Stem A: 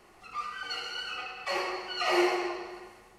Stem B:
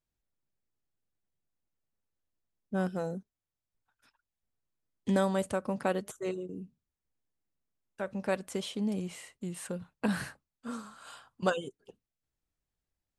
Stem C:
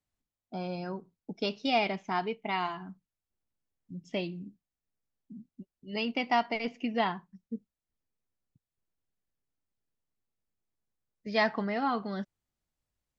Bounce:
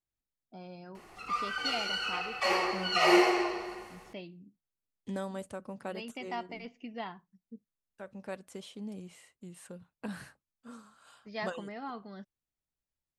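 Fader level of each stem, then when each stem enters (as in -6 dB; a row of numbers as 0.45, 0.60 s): +3.0, -9.5, -11.0 dB; 0.95, 0.00, 0.00 s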